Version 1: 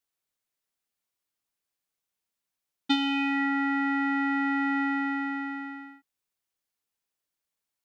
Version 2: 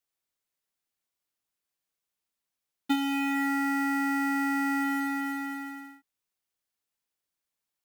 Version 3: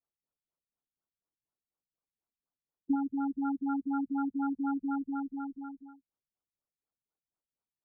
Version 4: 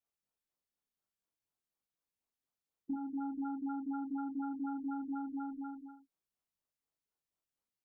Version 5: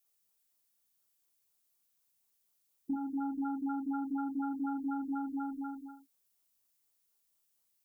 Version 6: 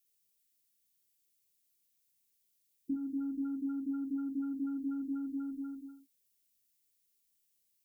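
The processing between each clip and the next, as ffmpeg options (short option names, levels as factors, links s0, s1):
-filter_complex "[0:a]acrossover=split=2600[s0][s1];[s1]acompressor=threshold=0.00562:ratio=4:attack=1:release=60[s2];[s0][s2]amix=inputs=2:normalize=0,acrusher=bits=4:mode=log:mix=0:aa=0.000001,volume=0.891"
-af "afftfilt=real='re*lt(b*sr/1024,200*pow(1600/200,0.5+0.5*sin(2*PI*4.1*pts/sr)))':imag='im*lt(b*sr/1024,200*pow(1600/200,0.5+0.5*sin(2*PI*4.1*pts/sr)))':win_size=1024:overlap=0.75,volume=0.841"
-filter_complex "[0:a]acompressor=threshold=0.0158:ratio=6,asplit=2[s0][s1];[s1]aecho=0:1:22|41|63:0.501|0.447|0.316[s2];[s0][s2]amix=inputs=2:normalize=0,volume=0.794"
-af "crystalizer=i=3:c=0,volume=1.41"
-af "asuperstop=centerf=970:order=4:qfactor=0.72"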